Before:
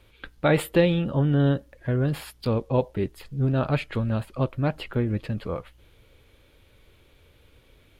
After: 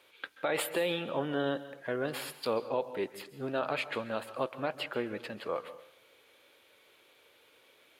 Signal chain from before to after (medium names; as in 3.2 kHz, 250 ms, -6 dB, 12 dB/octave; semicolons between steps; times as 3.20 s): high-pass 490 Hz 12 dB/octave; peak limiter -20.5 dBFS, peak gain reduction 10.5 dB; on a send: reverberation RT60 0.65 s, pre-delay 123 ms, DRR 13.5 dB